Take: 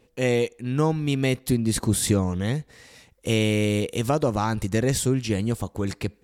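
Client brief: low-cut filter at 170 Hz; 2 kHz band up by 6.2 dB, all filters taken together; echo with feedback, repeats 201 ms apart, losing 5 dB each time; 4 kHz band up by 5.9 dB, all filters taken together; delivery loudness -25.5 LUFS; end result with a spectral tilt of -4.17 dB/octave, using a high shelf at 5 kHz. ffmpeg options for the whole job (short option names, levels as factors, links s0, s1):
-af "highpass=170,equalizer=f=2000:t=o:g=6,equalizer=f=4000:t=o:g=7.5,highshelf=f=5000:g=-5,aecho=1:1:201|402|603|804|1005|1206|1407:0.562|0.315|0.176|0.0988|0.0553|0.031|0.0173,volume=0.75"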